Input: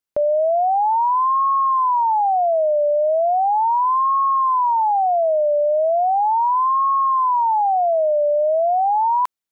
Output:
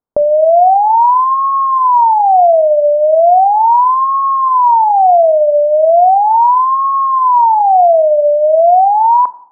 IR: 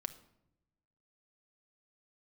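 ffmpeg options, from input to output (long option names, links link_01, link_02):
-filter_complex "[0:a]lowpass=frequency=1100:width=0.5412,lowpass=frequency=1100:width=1.3066,asplit=2[link_01][link_02];[1:a]atrim=start_sample=2205,asetrate=57330,aresample=44100[link_03];[link_02][link_03]afir=irnorm=-1:irlink=0,volume=10dB[link_04];[link_01][link_04]amix=inputs=2:normalize=0"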